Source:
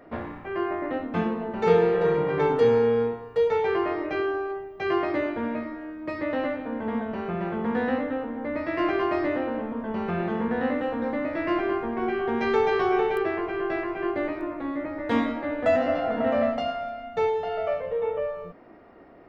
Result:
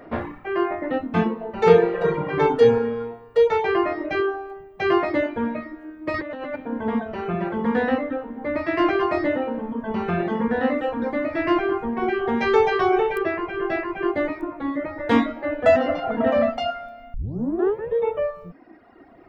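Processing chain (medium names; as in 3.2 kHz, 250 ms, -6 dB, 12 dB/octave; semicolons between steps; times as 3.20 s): reverb removal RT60 2 s; 6.14–6.56 s: compressor with a negative ratio -37 dBFS, ratio -1; 17.14 s: tape start 0.81 s; trim +6.5 dB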